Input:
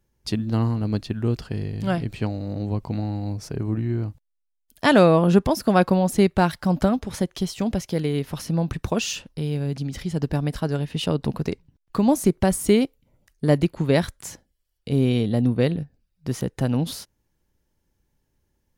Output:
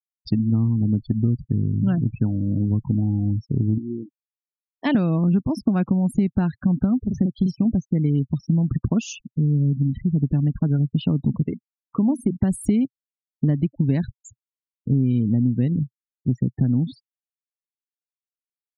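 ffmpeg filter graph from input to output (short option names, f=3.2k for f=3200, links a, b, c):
-filter_complex "[0:a]asettb=1/sr,asplit=3[a][b][c];[a]atrim=end=3.784[d];[b]atrim=start=3.78:end=4.95,asetpts=PTS-STARTPTS,afade=t=in:d=0.004:c=qsin,afade=t=out:st=1.166:d=0.004:c=qsin,equalizer=f=1.4k:t=o:w=0.48:g=-11,acrusher=bits=8:mode=log:mix=0:aa=0.000001,highpass=390,lowpass=5.2k[e];[c]atrim=start=4.946[f];[d][e]acrossfade=d=0.004:c1=hsin:c2=qsin[g];[g][f]acrossfade=d=0.004:c1=qsin:c2=hsin,asettb=1/sr,asplit=3[h][i][j];[h]atrim=end=7.014[k];[i]atrim=start=7.01:end=7.65,asetpts=PTS-STARTPTS,afade=t=in:d=0.004:c=qsin,afade=t=out:st=0.636:d=0.004:c=qsin,equalizer=f=13k:w=6.9:g=-13,asplit=2[l][m];[m]adelay=43,volume=-4dB[n];[l][n]amix=inputs=2:normalize=0,atrim=end_sample=28224[o];[j]atrim=start=7.646[p];[k][o]acrossfade=d=0.004:c1=hsin:c2=qsin[q];[q][p]acrossfade=d=0.004:c1=qsin:c2=hsin,asettb=1/sr,asplit=3[r][s][t];[r]atrim=end=11.434[u];[s]atrim=start=11.43:end=12.37,asetpts=PTS-STARTPTS,afade=t=in:d=0.004:c=qsin,afade=t=out:st=0.936:d=0.004:c=qsin,bass=f=250:g=-7,treble=f=4k:g=-3,bandreject=f=60:t=h:w=6,bandreject=f=120:t=h:w=6,bandreject=f=180:t=h:w=6,bandreject=f=240:t=h:w=6[v];[t]atrim=start=12.366[w];[u][v]acrossfade=d=0.004:c1=hsin:c2=qsin[x];[x][w]acrossfade=d=0.004:c1=qsin:c2=hsin,afftfilt=real='re*gte(hypot(re,im),0.0501)':imag='im*gte(hypot(re,im),0.0501)':win_size=1024:overlap=0.75,equalizer=f=125:t=o:w=1:g=9,equalizer=f=250:t=o:w=1:g=10,equalizer=f=500:t=o:w=1:g=-8,equalizer=f=1k:t=o:w=1:g=-4,equalizer=f=4k:t=o:w=1:g=-7,acompressor=threshold=-16dB:ratio=10"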